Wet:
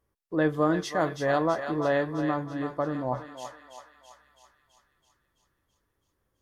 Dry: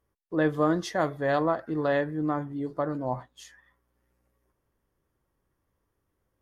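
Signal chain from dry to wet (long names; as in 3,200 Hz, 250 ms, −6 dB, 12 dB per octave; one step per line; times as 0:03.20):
feedback echo with a high-pass in the loop 330 ms, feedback 65%, high-pass 780 Hz, level −6.5 dB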